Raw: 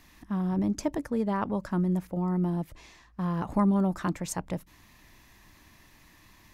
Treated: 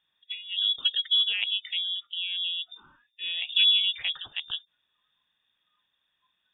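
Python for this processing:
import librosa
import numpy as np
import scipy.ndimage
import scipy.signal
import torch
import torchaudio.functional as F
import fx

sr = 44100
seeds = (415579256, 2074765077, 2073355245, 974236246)

y = fx.small_body(x, sr, hz=(250.0, 740.0), ring_ms=45, db=9)
y = fx.noise_reduce_blind(y, sr, reduce_db=21)
y = fx.freq_invert(y, sr, carrier_hz=3600)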